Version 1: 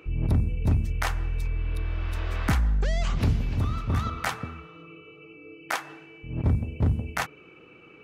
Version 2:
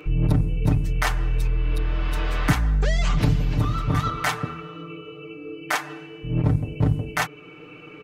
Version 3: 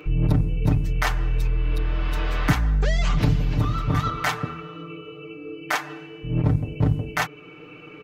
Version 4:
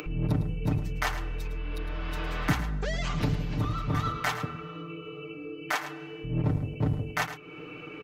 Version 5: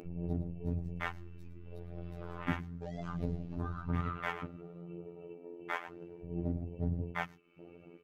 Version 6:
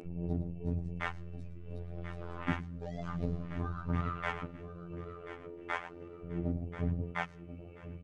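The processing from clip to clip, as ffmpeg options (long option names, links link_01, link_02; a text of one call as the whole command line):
ffmpeg -i in.wav -filter_complex "[0:a]asplit=2[link_01][link_02];[link_02]alimiter=limit=-23.5dB:level=0:latency=1:release=477,volume=1dB[link_03];[link_01][link_03]amix=inputs=2:normalize=0,aecho=1:1:6.7:0.81" out.wav
ffmpeg -i in.wav -af "equalizer=frequency=9300:width_type=o:width=0.57:gain=-6" out.wav
ffmpeg -i in.wav -filter_complex "[0:a]aecho=1:1:108:0.251,acrossover=split=120|3200[link_01][link_02][link_03];[link_01]volume=26dB,asoftclip=hard,volume=-26dB[link_04];[link_04][link_02][link_03]amix=inputs=3:normalize=0,acompressor=mode=upward:threshold=-29dB:ratio=2.5,volume=-5dB" out.wav
ffmpeg -i in.wav -af "afwtdn=0.0224,afftfilt=real='hypot(re,im)*cos(PI*b)':imag='0':win_size=2048:overlap=0.75,aphaser=in_gain=1:out_gain=1:delay=3.7:decay=0.31:speed=0.99:type=triangular,volume=-4dB" out.wav
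ffmpeg -i in.wav -af "aecho=1:1:1035|2070|3105:0.224|0.0739|0.0244,aresample=22050,aresample=44100,volume=1dB" out.wav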